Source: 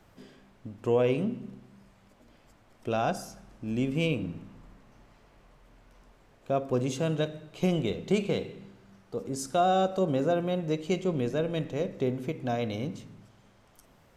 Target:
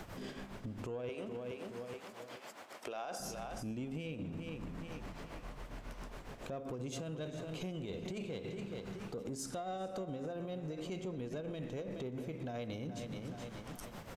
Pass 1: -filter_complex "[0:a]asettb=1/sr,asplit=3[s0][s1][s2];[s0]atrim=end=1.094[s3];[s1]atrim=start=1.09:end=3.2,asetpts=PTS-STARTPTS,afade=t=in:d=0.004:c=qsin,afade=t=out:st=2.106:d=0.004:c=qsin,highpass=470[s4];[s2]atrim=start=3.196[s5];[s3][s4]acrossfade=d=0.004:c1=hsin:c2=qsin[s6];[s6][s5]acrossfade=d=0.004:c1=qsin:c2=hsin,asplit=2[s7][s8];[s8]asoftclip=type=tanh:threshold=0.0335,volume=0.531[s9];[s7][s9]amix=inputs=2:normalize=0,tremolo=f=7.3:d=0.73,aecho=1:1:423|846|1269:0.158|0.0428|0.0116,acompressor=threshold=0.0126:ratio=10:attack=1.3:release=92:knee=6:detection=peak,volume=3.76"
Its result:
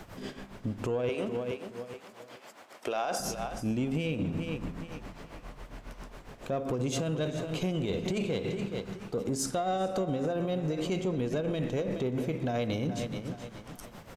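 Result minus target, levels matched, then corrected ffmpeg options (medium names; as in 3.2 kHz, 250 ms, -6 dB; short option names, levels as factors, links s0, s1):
compression: peak gain reduction -11 dB
-filter_complex "[0:a]asettb=1/sr,asplit=3[s0][s1][s2];[s0]atrim=end=1.094[s3];[s1]atrim=start=1.09:end=3.2,asetpts=PTS-STARTPTS,afade=t=in:d=0.004:c=qsin,afade=t=out:st=2.106:d=0.004:c=qsin,highpass=470[s4];[s2]atrim=start=3.196[s5];[s3][s4]acrossfade=d=0.004:c1=hsin:c2=qsin[s6];[s6][s5]acrossfade=d=0.004:c1=qsin:c2=hsin,asplit=2[s7][s8];[s8]asoftclip=type=tanh:threshold=0.0335,volume=0.531[s9];[s7][s9]amix=inputs=2:normalize=0,tremolo=f=7.3:d=0.73,aecho=1:1:423|846|1269:0.158|0.0428|0.0116,acompressor=threshold=0.00316:ratio=10:attack=1.3:release=92:knee=6:detection=peak,volume=3.76"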